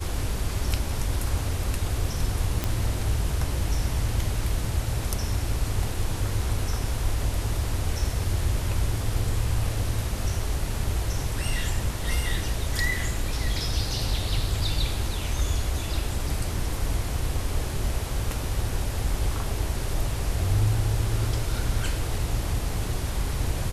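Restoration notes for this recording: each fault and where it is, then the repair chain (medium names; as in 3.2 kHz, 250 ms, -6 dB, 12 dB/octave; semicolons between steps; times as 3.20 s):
2.64 s: pop -10 dBFS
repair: de-click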